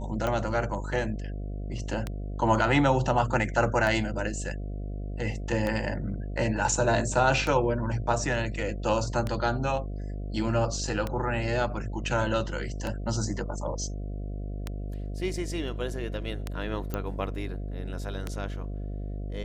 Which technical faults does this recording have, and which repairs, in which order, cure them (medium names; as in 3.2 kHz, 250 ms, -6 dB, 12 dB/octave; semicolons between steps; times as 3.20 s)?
buzz 50 Hz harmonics 14 -34 dBFS
tick 33 1/3 rpm -16 dBFS
16.94 s: pop -17 dBFS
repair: de-click; de-hum 50 Hz, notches 14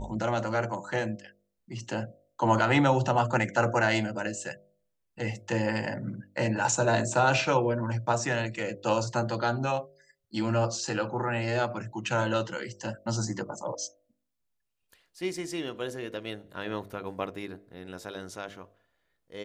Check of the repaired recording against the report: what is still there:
16.94 s: pop